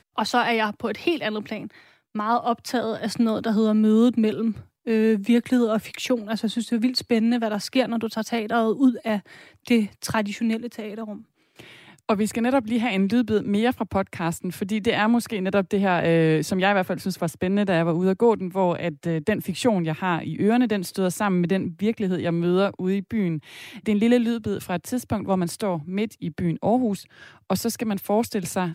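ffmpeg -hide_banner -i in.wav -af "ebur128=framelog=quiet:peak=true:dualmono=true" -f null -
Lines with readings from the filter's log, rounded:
Integrated loudness:
  I:         -20.4 LUFS
  Threshold: -30.7 LUFS
Loudness range:
  LRA:         4.0 LU
  Threshold: -40.6 LUFS
  LRA low:   -22.8 LUFS
  LRA high:  -18.8 LUFS
True peak:
  Peak:       -6.3 dBFS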